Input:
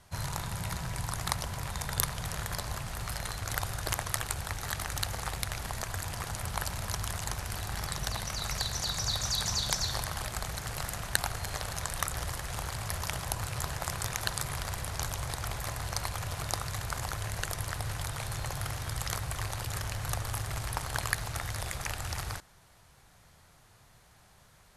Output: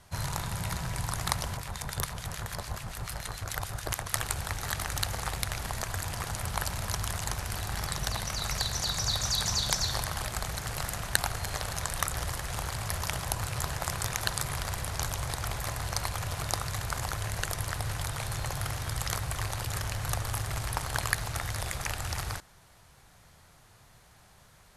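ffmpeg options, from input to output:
-filter_complex "[0:a]asettb=1/sr,asplit=3[s0][s1][s2];[s0]atrim=end=1.574[s3];[s1]atrim=start=1.57:end=4.13,asetpts=PTS-STARTPTS,afade=t=in:d=0.004:c=qsin,afade=t=out:st=2.556:d=0.004:c=qsin,acrossover=split=1500[s4][s5];[s4]aeval=exprs='val(0)*(1-0.7/2+0.7/2*cos(2*PI*6.9*n/s))':c=same[s6];[s5]aeval=exprs='val(0)*(1-0.7/2-0.7/2*cos(2*PI*6.9*n/s))':c=same[s7];[s6][s7]amix=inputs=2:normalize=0[s8];[s2]atrim=start=4.126[s9];[s3][s8]acrossfade=d=0.004:c1=hsin:c2=qsin[s10];[s10][s9]acrossfade=d=0.004:c1=qsin:c2=hsin,volume=1.26"

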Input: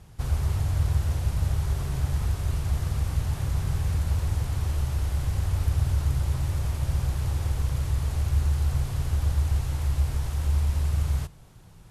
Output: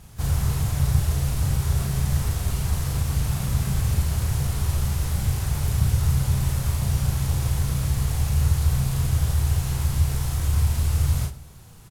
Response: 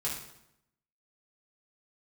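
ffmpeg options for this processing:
-filter_complex "[0:a]bandreject=f=48.54:t=h:w=4,bandreject=f=97.08:t=h:w=4,bandreject=f=145.62:t=h:w=4,bandreject=f=194.16:t=h:w=4,bandreject=f=242.7:t=h:w=4,bandreject=f=291.24:t=h:w=4,bandreject=f=339.78:t=h:w=4,bandreject=f=388.32:t=h:w=4,bandreject=f=436.86:t=h:w=4,bandreject=f=485.4:t=h:w=4,bandreject=f=533.94:t=h:w=4,bandreject=f=582.48:t=h:w=4,bandreject=f=631.02:t=h:w=4,bandreject=f=679.56:t=h:w=4,bandreject=f=728.1:t=h:w=4,asplit=4[s0][s1][s2][s3];[s1]asetrate=52444,aresample=44100,atempo=0.840896,volume=0.316[s4];[s2]asetrate=55563,aresample=44100,atempo=0.793701,volume=0.251[s5];[s3]asetrate=66075,aresample=44100,atempo=0.66742,volume=0.224[s6];[s0][s4][s5][s6]amix=inputs=4:normalize=0,highshelf=f=4800:g=8.5,asplit=2[s7][s8];[s8]adelay=36,volume=0.631[s9];[s7][s9]amix=inputs=2:normalize=0,asplit=2[s10][s11];[1:a]atrim=start_sample=2205[s12];[s11][s12]afir=irnorm=-1:irlink=0,volume=0.188[s13];[s10][s13]amix=inputs=2:normalize=0"

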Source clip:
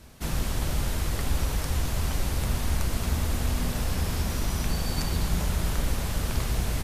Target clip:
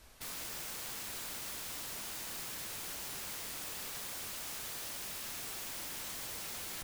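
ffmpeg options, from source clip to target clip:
-af "equalizer=f=150:t=o:w=2.5:g=-14,aeval=exprs='(mod(47.3*val(0)+1,2)-1)/47.3':c=same,volume=0.596"

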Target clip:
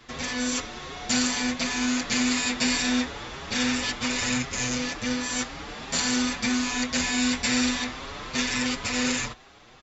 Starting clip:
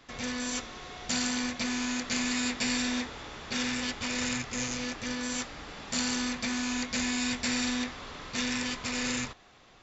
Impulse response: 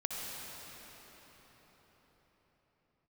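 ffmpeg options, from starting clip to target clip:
-filter_complex "[0:a]asplit=2[s0][s1];[s1]adelay=6.4,afreqshift=2.8[s2];[s0][s2]amix=inputs=2:normalize=1,volume=2.66"

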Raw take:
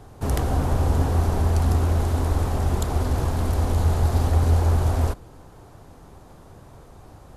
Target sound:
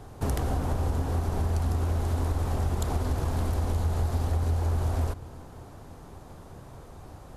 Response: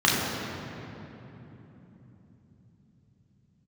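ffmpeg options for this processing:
-filter_complex "[0:a]acompressor=threshold=0.0631:ratio=6,asplit=2[s0][s1];[1:a]atrim=start_sample=2205,adelay=142[s2];[s1][s2]afir=irnorm=-1:irlink=0,volume=0.0119[s3];[s0][s3]amix=inputs=2:normalize=0"

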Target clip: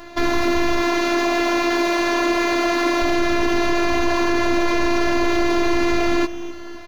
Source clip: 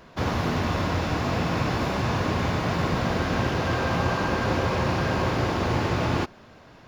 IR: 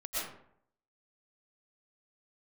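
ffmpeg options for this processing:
-filter_complex "[0:a]asettb=1/sr,asplit=3[s0][s1][s2];[s0]atrim=end=0.804[s3];[s1]atrim=start=0.8:end=3.02,asetpts=PTS-STARTPTS,afade=t=in:d=0.004:c=qsin,afade=t=out:st=2.216:d=0.004:c=qsin,highpass=240[s4];[s2]atrim=start=3.016[s5];[s3][s4]acrossfade=d=0.004:c1=hsin:c2=qsin[s6];[s6][s5]acrossfade=d=0.004:c1=qsin:c2=hsin,afftfilt=real='hypot(re,im)*cos(PI*b)':imag='0':win_size=512:overlap=0.75,asplit=2[s7][s8];[s8]adelay=15,volume=0.447[s9];[s7][s9]amix=inputs=2:normalize=0,aecho=1:1:258|516|774|1032:0.0891|0.049|0.027|0.0148,alimiter=level_in=10:limit=0.891:release=50:level=0:latency=1,volume=0.531"

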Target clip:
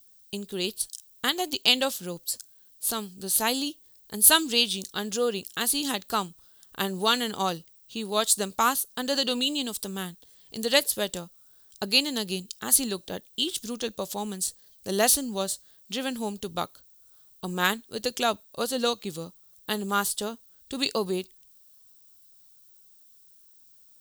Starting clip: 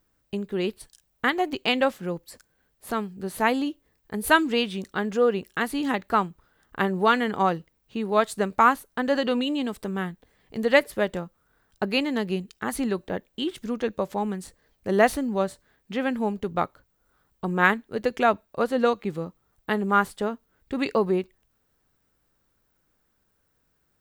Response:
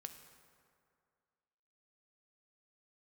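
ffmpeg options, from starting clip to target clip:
-af "aexciter=amount=10:drive=3.7:freq=3100,volume=0.531"

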